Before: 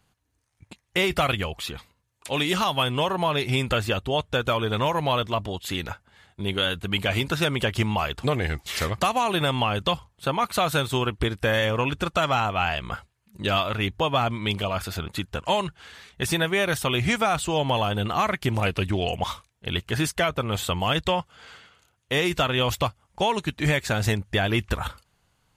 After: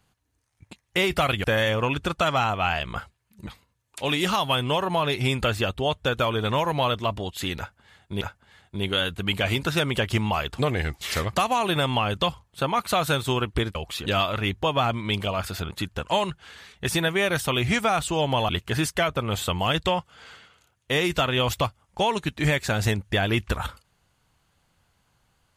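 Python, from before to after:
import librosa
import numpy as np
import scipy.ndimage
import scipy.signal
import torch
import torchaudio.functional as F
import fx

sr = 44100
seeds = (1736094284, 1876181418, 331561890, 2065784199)

y = fx.edit(x, sr, fx.swap(start_s=1.44, length_s=0.31, other_s=11.4, other_length_s=2.03),
    fx.repeat(start_s=5.86, length_s=0.63, count=2),
    fx.cut(start_s=17.86, length_s=1.84), tone=tone)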